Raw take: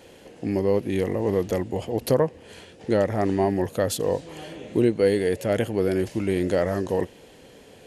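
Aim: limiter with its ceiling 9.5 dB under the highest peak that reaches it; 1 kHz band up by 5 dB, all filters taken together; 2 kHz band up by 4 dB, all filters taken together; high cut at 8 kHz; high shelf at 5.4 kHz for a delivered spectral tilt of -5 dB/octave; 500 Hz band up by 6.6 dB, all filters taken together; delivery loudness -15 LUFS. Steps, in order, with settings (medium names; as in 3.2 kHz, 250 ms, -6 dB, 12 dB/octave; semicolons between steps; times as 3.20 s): low-pass 8 kHz; peaking EQ 500 Hz +7 dB; peaking EQ 1 kHz +3 dB; peaking EQ 2 kHz +4.5 dB; treble shelf 5.4 kHz -9 dB; trim +8 dB; peak limiter -4.5 dBFS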